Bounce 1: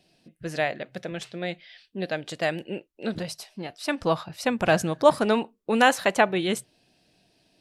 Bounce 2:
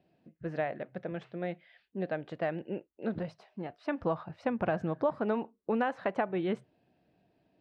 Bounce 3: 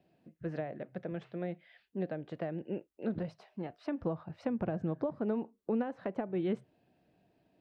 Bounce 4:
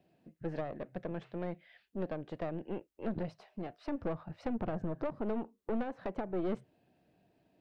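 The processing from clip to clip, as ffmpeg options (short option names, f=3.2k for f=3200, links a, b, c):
-af "highpass=47,acompressor=threshold=-22dB:ratio=6,lowpass=1.5k,volume=-3.5dB"
-filter_complex "[0:a]acrossover=split=490[a][b];[b]acompressor=threshold=-45dB:ratio=4[c];[a][c]amix=inputs=2:normalize=0"
-af "aeval=exprs='(tanh(44.7*val(0)+0.65)-tanh(0.65))/44.7':c=same,volume=3.5dB"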